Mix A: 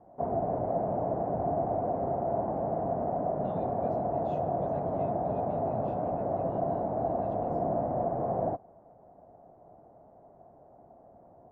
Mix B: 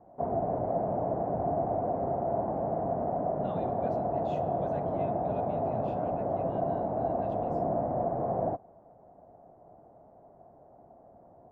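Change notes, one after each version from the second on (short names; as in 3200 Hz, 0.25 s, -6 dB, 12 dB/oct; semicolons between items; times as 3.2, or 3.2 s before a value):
speech +7.0 dB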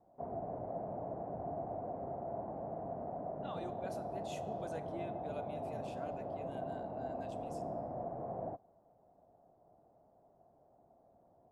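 background -11.5 dB; master: remove LPF 3200 Hz 12 dB/oct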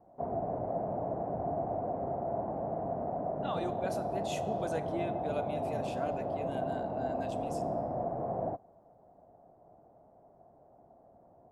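speech +9.0 dB; background +7.0 dB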